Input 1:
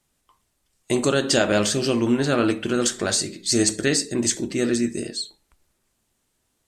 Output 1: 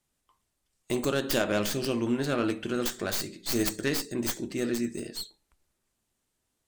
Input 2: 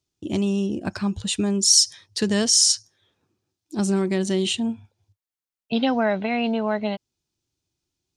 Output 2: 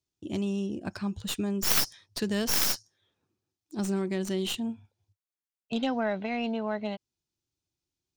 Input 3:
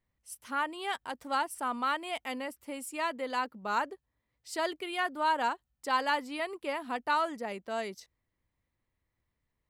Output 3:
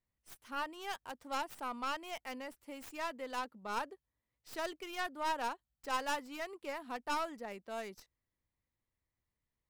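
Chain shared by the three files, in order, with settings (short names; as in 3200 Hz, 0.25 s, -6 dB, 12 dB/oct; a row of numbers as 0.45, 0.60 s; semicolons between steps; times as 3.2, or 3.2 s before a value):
tracing distortion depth 0.17 ms; gain -7.5 dB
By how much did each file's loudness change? -8.0, -8.5, -7.0 LU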